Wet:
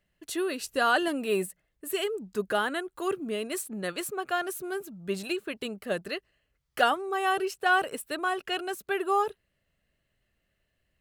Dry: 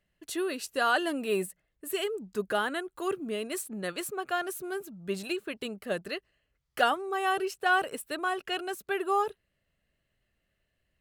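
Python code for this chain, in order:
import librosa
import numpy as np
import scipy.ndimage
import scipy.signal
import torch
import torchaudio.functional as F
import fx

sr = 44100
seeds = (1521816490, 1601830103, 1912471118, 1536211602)

y = fx.low_shelf(x, sr, hz=150.0, db=11.0, at=(0.6, 1.08))
y = y * 10.0 ** (1.5 / 20.0)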